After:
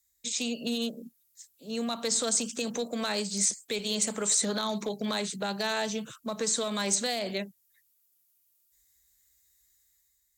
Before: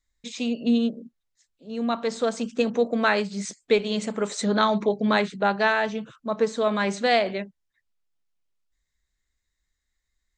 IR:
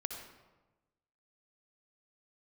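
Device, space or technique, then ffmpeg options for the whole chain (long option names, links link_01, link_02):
FM broadcast chain: -filter_complex "[0:a]highpass=45,dynaudnorm=framelen=120:gausssize=9:maxgain=6dB,acrossover=split=210|420|1100|3200[link_01][link_02][link_03][link_04][link_05];[link_01]acompressor=threshold=-31dB:ratio=4[link_06];[link_02]acompressor=threshold=-33dB:ratio=4[link_07];[link_03]acompressor=threshold=-27dB:ratio=4[link_08];[link_04]acompressor=threshold=-36dB:ratio=4[link_09];[link_05]acompressor=threshold=-31dB:ratio=4[link_10];[link_06][link_07][link_08][link_09][link_10]amix=inputs=5:normalize=0,aemphasis=mode=production:type=50fm,alimiter=limit=-16.5dB:level=0:latency=1:release=48,asoftclip=type=hard:threshold=-18dB,lowpass=frequency=15000:width=0.5412,lowpass=frequency=15000:width=1.3066,aemphasis=mode=production:type=50fm,volume=-5.5dB"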